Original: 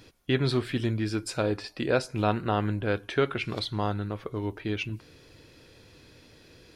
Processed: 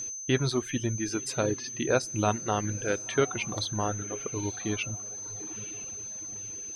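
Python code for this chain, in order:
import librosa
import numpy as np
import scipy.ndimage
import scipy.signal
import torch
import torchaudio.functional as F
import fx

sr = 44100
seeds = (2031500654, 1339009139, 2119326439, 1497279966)

y = x + 10.0 ** (-33.0 / 20.0) * np.sin(2.0 * np.pi * 6200.0 * np.arange(len(x)) / sr)
y = fx.echo_diffused(y, sr, ms=959, feedback_pct=41, wet_db=-12.5)
y = fx.dereverb_blind(y, sr, rt60_s=1.5)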